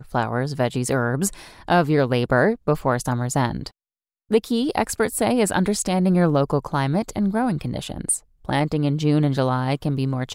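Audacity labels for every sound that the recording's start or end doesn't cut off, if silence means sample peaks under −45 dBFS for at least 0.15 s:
4.300000	8.200000	sound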